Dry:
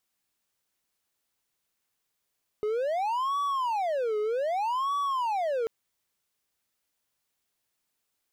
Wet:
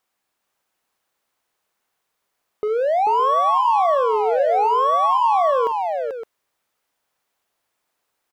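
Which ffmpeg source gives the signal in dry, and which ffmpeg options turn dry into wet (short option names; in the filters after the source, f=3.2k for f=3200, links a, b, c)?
-f lavfi -i "aevalsrc='0.0668*(1-4*abs(mod((780.5*t-359.5/(2*PI*0.64)*sin(2*PI*0.64*t))+0.25,1)-0.5))':d=3.04:s=44100"
-filter_complex "[0:a]equalizer=f=850:t=o:w=2.9:g=10.5,asplit=2[a][b];[b]aecho=0:1:46|438|564:0.168|0.501|0.316[c];[a][c]amix=inputs=2:normalize=0"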